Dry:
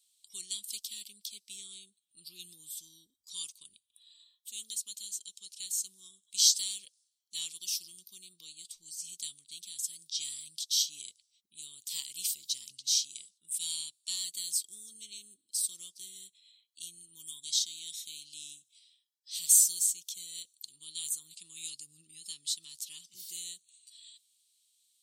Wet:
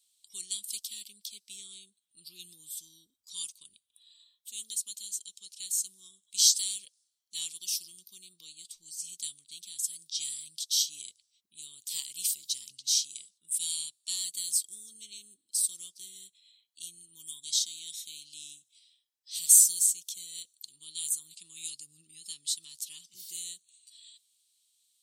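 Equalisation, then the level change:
dynamic equaliser 10,000 Hz, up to +5 dB, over −44 dBFS, Q 1.1
0.0 dB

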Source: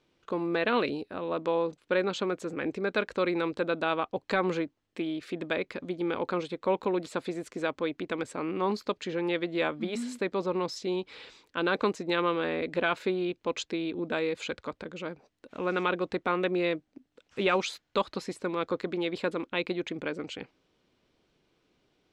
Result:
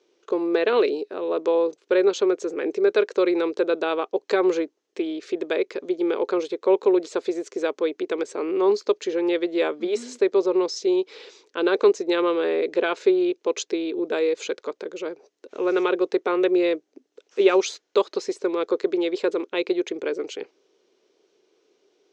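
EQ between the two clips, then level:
high-pass with resonance 400 Hz, resonance Q 4.9
low-pass with resonance 6,300 Hz, resonance Q 3.4
0.0 dB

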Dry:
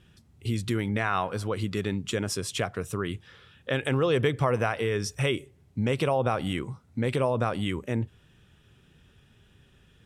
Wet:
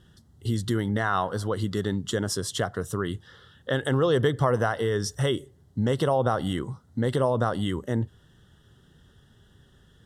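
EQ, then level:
Butterworth band-reject 2,400 Hz, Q 2.4
+2.0 dB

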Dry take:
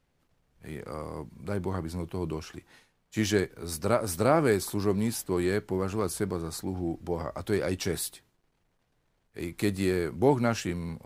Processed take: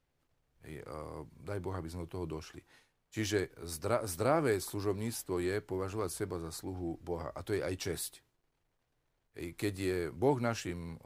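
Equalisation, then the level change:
parametric band 200 Hz −13.5 dB 0.22 octaves
−6.0 dB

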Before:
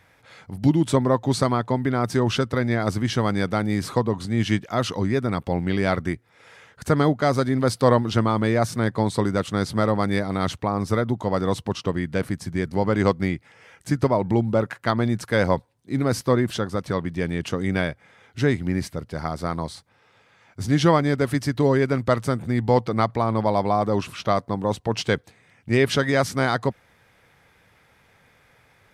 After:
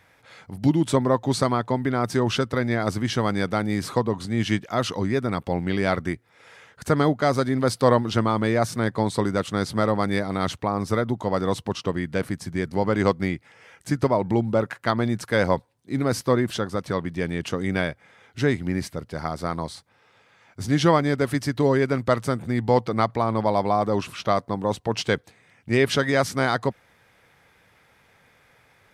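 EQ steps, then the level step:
low-shelf EQ 160 Hz −4 dB
0.0 dB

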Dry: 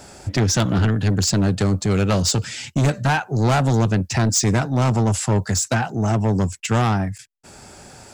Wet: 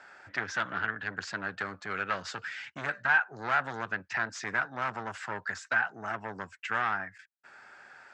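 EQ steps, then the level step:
resonant band-pass 1,600 Hz, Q 3.3
high-frequency loss of the air 63 metres
+2.5 dB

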